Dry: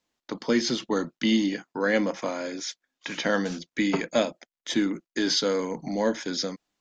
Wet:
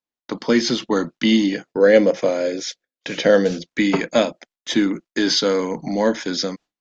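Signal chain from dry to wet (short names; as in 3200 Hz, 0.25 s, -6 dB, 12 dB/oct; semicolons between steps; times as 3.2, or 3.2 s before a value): LPF 6800 Hz 12 dB/oct; gate with hold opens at -39 dBFS; 1.56–3.64 ten-band EQ 125 Hz +5 dB, 250 Hz -3 dB, 500 Hz +10 dB, 1000 Hz -9 dB; gain +6.5 dB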